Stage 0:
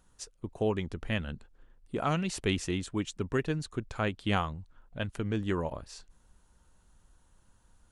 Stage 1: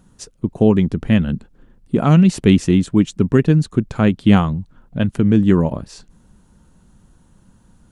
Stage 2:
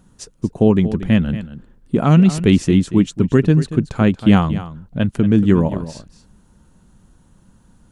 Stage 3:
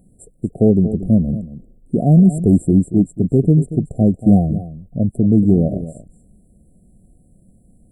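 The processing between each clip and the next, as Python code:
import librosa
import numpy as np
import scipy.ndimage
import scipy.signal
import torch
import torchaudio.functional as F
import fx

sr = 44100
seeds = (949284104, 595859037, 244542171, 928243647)

y1 = fx.peak_eq(x, sr, hz=190.0, db=14.5, octaves=1.9)
y1 = y1 * librosa.db_to_amplitude(7.5)
y2 = y1 + 10.0 ** (-13.5 / 20.0) * np.pad(y1, (int(232 * sr / 1000.0), 0))[:len(y1)]
y3 = np.clip(10.0 ** (5.5 / 20.0) * y2, -1.0, 1.0) / 10.0 ** (5.5 / 20.0)
y3 = fx.brickwall_bandstop(y3, sr, low_hz=760.0, high_hz=7300.0)
y3 = fx.hpss(y3, sr, part='percussive', gain_db=-3)
y3 = y3 * librosa.db_to_amplitude(1.5)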